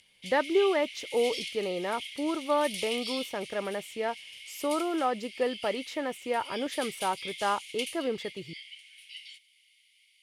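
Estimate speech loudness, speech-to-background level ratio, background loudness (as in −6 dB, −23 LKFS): −31.0 LKFS, 8.5 dB, −39.5 LKFS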